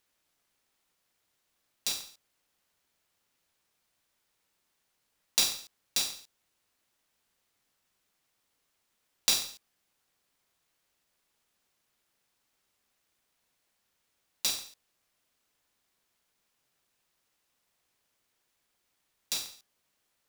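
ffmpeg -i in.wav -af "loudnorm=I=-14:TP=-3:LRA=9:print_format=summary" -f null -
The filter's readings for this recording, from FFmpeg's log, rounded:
Input Integrated:    -31.0 LUFS
Input True Peak:      -5.1 dBTP
Input LRA:             9.0 LU
Input Threshold:     -42.2 LUFS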